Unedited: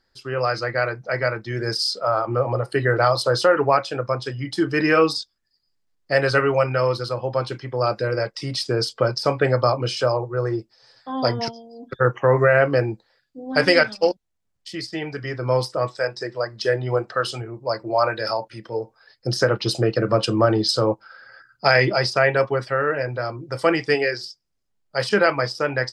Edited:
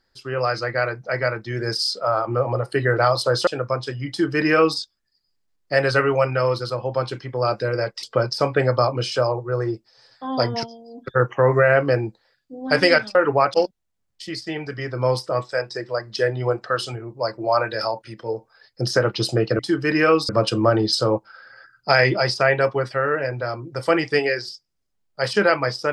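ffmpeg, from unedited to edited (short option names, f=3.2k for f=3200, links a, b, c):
-filter_complex "[0:a]asplit=7[a][b][c][d][e][f][g];[a]atrim=end=3.472[h];[b]atrim=start=3.858:end=8.422[i];[c]atrim=start=8.878:end=14.002[j];[d]atrim=start=3.468:end=3.862[k];[e]atrim=start=13.998:end=20.052[l];[f]atrim=start=4.478:end=5.182[m];[g]atrim=start=20.048[n];[h][i]acrossfade=d=0.004:c1=hsin:c2=hsin[o];[o][j]acrossfade=d=0.004:c1=hsin:c2=hsin[p];[p][k]acrossfade=d=0.004:c1=hsin:c2=hsin[q];[q][l]acrossfade=d=0.004:c1=hsin:c2=hsin[r];[r][m]acrossfade=d=0.004:c1=hsin:c2=hsin[s];[s][n]acrossfade=d=0.004:c1=hsin:c2=hsin"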